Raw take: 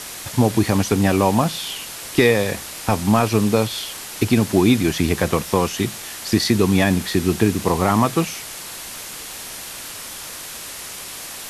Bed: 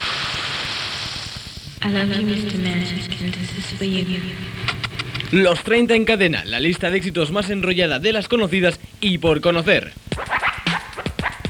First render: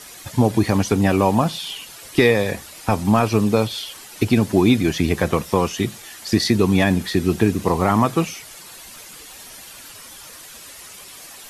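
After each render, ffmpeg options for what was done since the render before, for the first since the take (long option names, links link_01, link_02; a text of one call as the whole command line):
ffmpeg -i in.wav -af "afftdn=noise_reduction=10:noise_floor=-34" out.wav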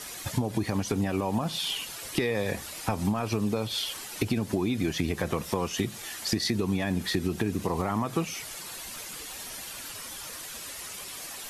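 ffmpeg -i in.wav -af "alimiter=limit=-9dB:level=0:latency=1:release=103,acompressor=threshold=-24dB:ratio=6" out.wav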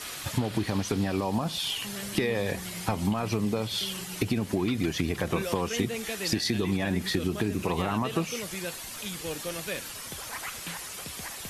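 ffmpeg -i in.wav -i bed.wav -filter_complex "[1:a]volume=-19.5dB[link_01];[0:a][link_01]amix=inputs=2:normalize=0" out.wav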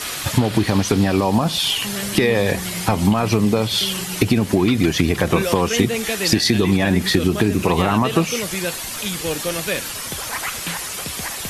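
ffmpeg -i in.wav -af "volume=11dB,alimiter=limit=-1dB:level=0:latency=1" out.wav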